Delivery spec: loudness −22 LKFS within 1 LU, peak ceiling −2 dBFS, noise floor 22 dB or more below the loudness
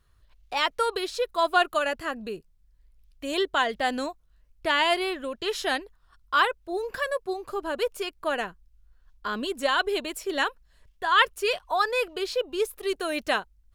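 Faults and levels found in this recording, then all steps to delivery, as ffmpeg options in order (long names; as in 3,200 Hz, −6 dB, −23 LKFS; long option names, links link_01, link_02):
integrated loudness −27.0 LKFS; sample peak −7.5 dBFS; target loudness −22.0 LKFS
→ -af "volume=5dB"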